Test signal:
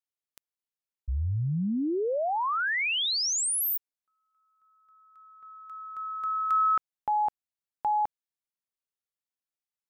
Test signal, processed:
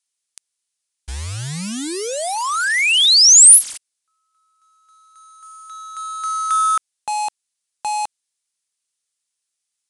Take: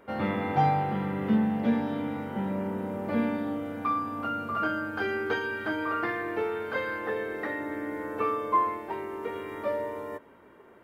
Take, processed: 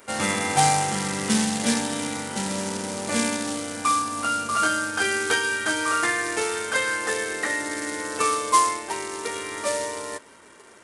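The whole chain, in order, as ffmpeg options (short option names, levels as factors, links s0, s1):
-af "acrusher=bits=4:mode=log:mix=0:aa=0.000001,aresample=22050,aresample=44100,crystalizer=i=10:c=0"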